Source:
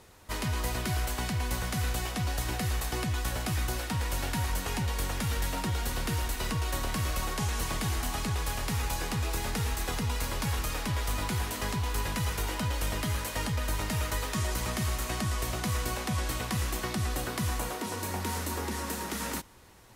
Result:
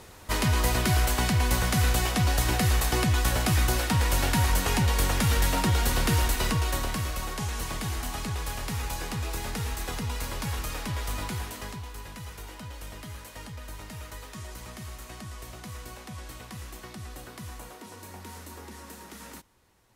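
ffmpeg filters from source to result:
-af "volume=2.24,afade=t=out:st=6.24:d=0.87:silence=0.398107,afade=t=out:st=11.21:d=0.71:silence=0.354813"

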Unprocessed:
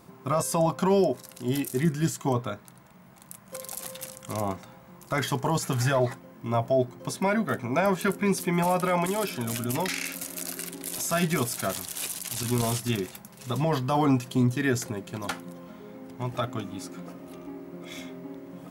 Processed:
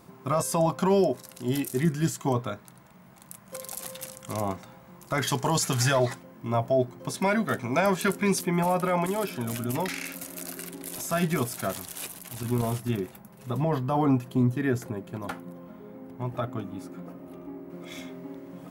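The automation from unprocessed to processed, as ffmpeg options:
-af "asetnsamples=n=441:p=0,asendcmd='5.27 equalizer g 7;6.23 equalizer g -2;7.14 equalizer g 4;8.41 equalizer g -5.5;12.07 equalizer g -12.5;17.7 equalizer g -1.5',equalizer=f=5800:t=o:w=2.6:g=-0.5"

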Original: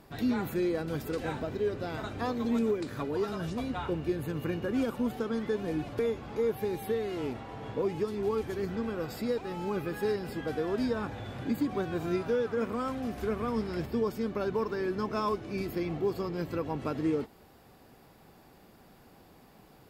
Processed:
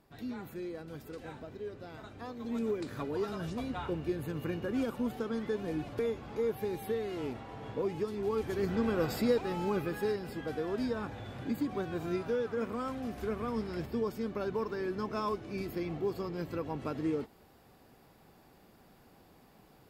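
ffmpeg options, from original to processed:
-af "volume=1.68,afade=t=in:st=2.37:d=0.43:silence=0.398107,afade=t=in:st=8.27:d=0.77:silence=0.421697,afade=t=out:st=9.04:d=1.15:silence=0.398107"

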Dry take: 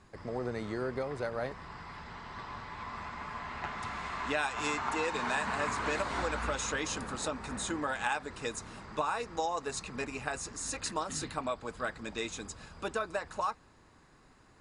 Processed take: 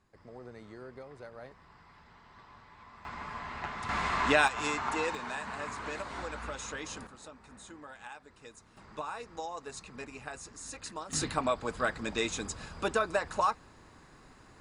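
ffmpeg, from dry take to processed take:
-af "asetnsamples=n=441:p=0,asendcmd='3.05 volume volume 0dB;3.89 volume volume 7.5dB;4.48 volume volume 0.5dB;5.15 volume volume -6dB;7.07 volume volume -14.5dB;8.77 volume volume -6.5dB;11.13 volume volume 5dB',volume=0.251"

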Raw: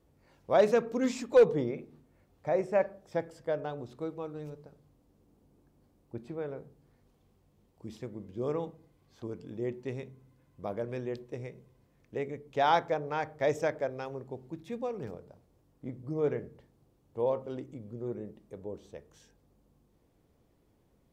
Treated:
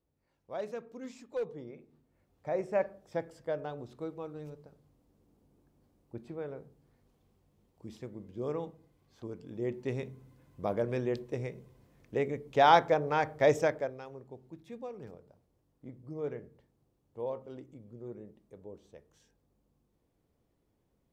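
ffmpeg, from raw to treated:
-af "volume=1.58,afade=t=in:st=1.61:d=1.2:silence=0.251189,afade=t=in:st=9.46:d=0.62:silence=0.473151,afade=t=out:st=13.52:d=0.48:silence=0.281838"

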